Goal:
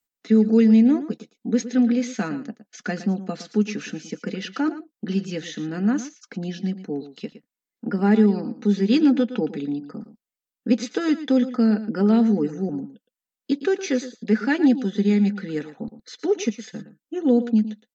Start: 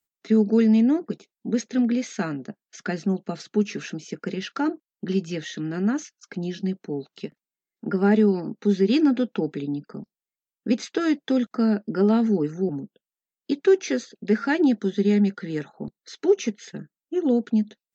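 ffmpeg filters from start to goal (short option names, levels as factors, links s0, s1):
-filter_complex "[0:a]aecho=1:1:4:0.45,asplit=2[s0][s1];[s1]aecho=0:1:114:0.211[s2];[s0][s2]amix=inputs=2:normalize=0"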